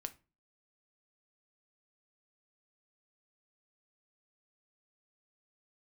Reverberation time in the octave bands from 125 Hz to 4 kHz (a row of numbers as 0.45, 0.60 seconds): 0.45, 0.45, 0.35, 0.30, 0.30, 0.25 seconds